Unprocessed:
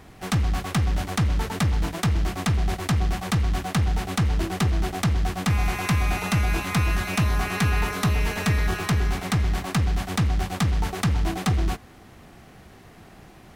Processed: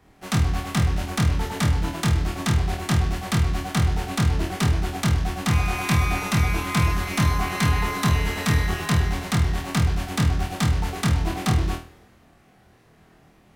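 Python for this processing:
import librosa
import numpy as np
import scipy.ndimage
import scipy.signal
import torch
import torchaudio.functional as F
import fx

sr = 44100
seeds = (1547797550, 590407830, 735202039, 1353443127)

y = fx.room_flutter(x, sr, wall_m=4.3, rt60_s=0.37)
y = fx.band_widen(y, sr, depth_pct=40)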